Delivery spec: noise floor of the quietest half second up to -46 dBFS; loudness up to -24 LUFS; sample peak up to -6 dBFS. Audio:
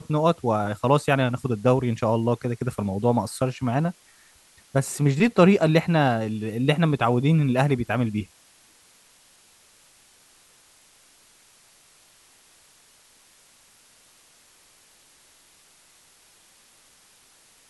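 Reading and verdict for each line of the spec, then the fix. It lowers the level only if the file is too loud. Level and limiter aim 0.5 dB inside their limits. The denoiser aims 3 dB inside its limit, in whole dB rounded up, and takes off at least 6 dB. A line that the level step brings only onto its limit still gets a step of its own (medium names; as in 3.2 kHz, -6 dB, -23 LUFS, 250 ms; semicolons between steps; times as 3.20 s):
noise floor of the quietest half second -57 dBFS: pass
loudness -22.5 LUFS: fail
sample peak -5.0 dBFS: fail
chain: trim -2 dB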